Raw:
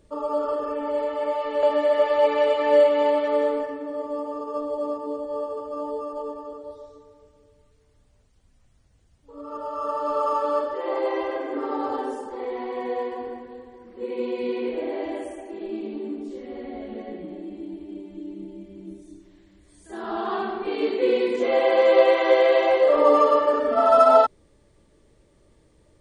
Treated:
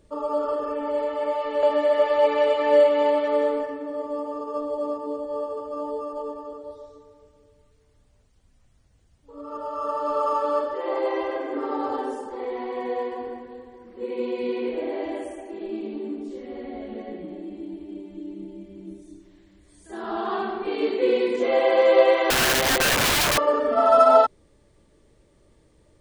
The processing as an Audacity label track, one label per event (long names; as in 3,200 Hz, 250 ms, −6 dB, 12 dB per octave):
22.300000	23.380000	wrap-around overflow gain 16 dB